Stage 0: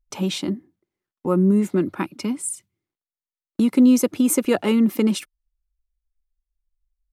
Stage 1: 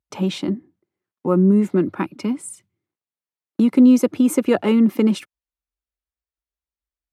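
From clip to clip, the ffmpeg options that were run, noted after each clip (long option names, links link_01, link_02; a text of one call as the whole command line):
ffmpeg -i in.wav -af "highpass=frequency=77:width=0.5412,highpass=frequency=77:width=1.3066,highshelf=frequency=3900:gain=-11,volume=2.5dB" out.wav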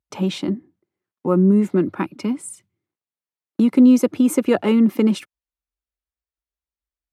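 ffmpeg -i in.wav -af anull out.wav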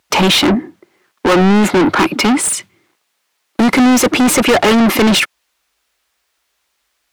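ffmpeg -i in.wav -filter_complex "[0:a]asplit=2[link_01][link_02];[link_02]highpass=frequency=720:poles=1,volume=37dB,asoftclip=type=tanh:threshold=-4dB[link_03];[link_01][link_03]amix=inputs=2:normalize=0,lowpass=frequency=2500:poles=1,volume=-6dB,crystalizer=i=4:c=0,lowpass=frequency=3600:poles=1" out.wav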